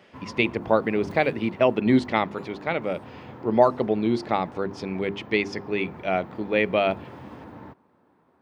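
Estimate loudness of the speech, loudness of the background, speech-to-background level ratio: -25.0 LUFS, -43.0 LUFS, 18.0 dB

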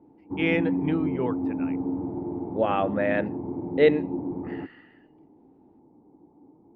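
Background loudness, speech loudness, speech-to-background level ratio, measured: -30.5 LUFS, -26.5 LUFS, 4.0 dB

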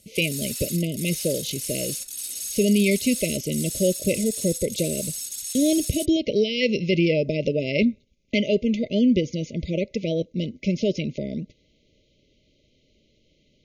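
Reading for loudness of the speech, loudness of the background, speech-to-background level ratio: -24.5 LUFS, -30.0 LUFS, 5.5 dB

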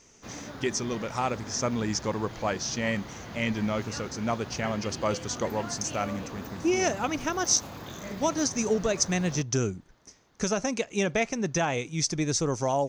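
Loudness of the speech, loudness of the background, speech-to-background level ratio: -29.0 LUFS, -41.0 LUFS, 12.0 dB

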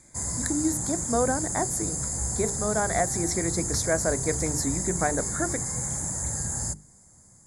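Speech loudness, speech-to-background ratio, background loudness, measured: -29.0 LUFS, -1.0 dB, -28.0 LUFS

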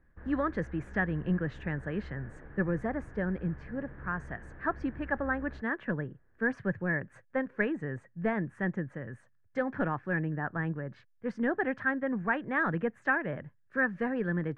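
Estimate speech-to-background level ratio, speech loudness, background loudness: 15.5 dB, -33.0 LUFS, -48.5 LUFS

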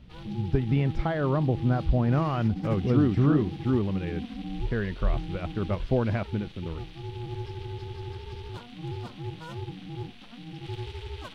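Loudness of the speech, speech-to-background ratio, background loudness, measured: -27.5 LUFS, 11.0 dB, -38.5 LUFS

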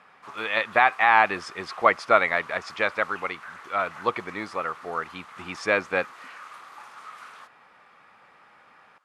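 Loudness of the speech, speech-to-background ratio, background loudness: -24.5 LUFS, 19.5 dB, -44.0 LUFS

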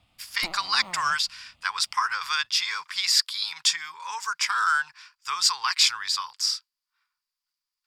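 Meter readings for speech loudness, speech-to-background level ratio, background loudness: -24.5 LUFS, 19.0 dB, -43.5 LUFS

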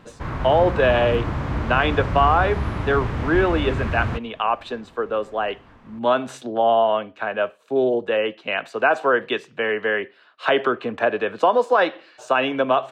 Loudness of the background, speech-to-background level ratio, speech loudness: -26.5 LUFS, 5.0 dB, -21.5 LUFS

